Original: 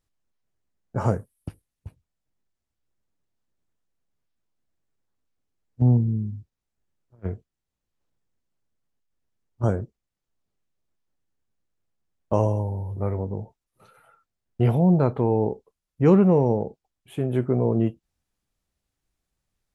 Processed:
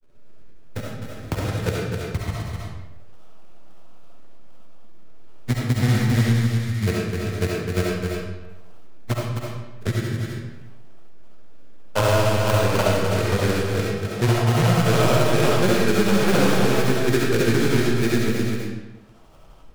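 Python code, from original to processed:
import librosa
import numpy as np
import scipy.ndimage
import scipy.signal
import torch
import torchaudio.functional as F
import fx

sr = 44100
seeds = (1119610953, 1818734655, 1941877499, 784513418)

p1 = scipy.signal.sosfilt(scipy.signal.cheby1(4, 1.0, 2500.0, 'lowpass', fs=sr, output='sos'), x)
p2 = fx.peak_eq(p1, sr, hz=1300.0, db=9.5, octaves=0.42)
p3 = fx.over_compress(p2, sr, threshold_db=-24.0, ratio=-1.0)
p4 = p2 + F.gain(torch.from_numpy(p3), -2.5).numpy()
p5 = 10.0 ** (-14.5 / 20.0) * np.tanh(p4 / 10.0 ** (-14.5 / 20.0))
p6 = fx.filter_lfo_lowpass(p5, sr, shape='saw_up', hz=0.46, low_hz=370.0, high_hz=1700.0, q=1.5)
p7 = fx.sample_hold(p6, sr, seeds[0], rate_hz=2000.0, jitter_pct=20)
p8 = fx.granulator(p7, sr, seeds[1], grain_ms=100.0, per_s=20.0, spray_ms=574.0, spread_st=0)
p9 = p8 + 10.0 ** (-8.0 / 20.0) * np.pad(p8, (int(256 * sr / 1000.0), 0))[:len(p8)]
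p10 = fx.rev_freeverb(p9, sr, rt60_s=0.76, hf_ratio=0.85, predelay_ms=25, drr_db=-3.5)
y = fx.band_squash(p10, sr, depth_pct=70)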